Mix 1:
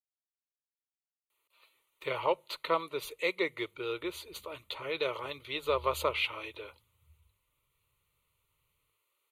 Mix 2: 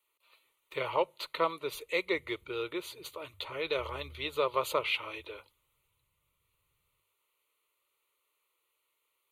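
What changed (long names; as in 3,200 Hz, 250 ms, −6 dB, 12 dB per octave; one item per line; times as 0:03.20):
speech: entry −1.30 s
background: entry −1.90 s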